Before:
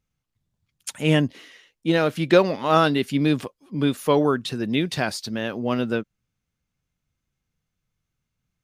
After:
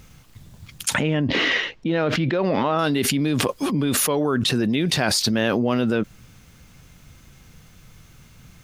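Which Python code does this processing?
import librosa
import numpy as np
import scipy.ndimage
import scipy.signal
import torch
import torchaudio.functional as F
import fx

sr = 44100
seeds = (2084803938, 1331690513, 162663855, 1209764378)

y = fx.air_absorb(x, sr, metres=210.0, at=(0.94, 2.79))
y = fx.env_flatten(y, sr, amount_pct=100)
y = F.gain(torch.from_numpy(y), -9.0).numpy()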